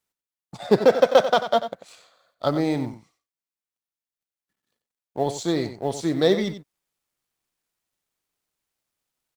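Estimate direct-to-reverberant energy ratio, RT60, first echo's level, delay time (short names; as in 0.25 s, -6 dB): none, none, -11.5 dB, 92 ms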